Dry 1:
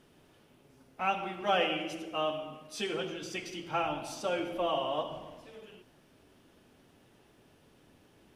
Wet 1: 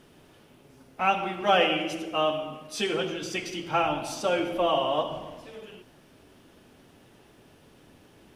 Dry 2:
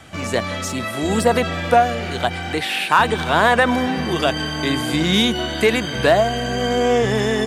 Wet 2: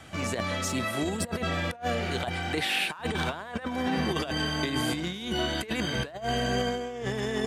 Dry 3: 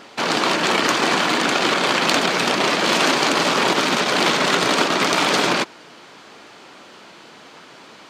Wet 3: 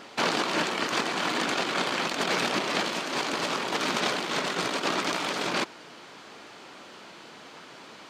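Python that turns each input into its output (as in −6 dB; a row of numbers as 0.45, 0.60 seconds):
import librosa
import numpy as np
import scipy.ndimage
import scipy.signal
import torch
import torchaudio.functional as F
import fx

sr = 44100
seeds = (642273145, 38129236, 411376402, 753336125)

y = fx.over_compress(x, sr, threshold_db=-21.0, ratio=-0.5)
y = y * 10.0 ** (-30 / 20.0) / np.sqrt(np.mean(np.square(y)))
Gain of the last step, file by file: +6.5, −8.0, −6.5 decibels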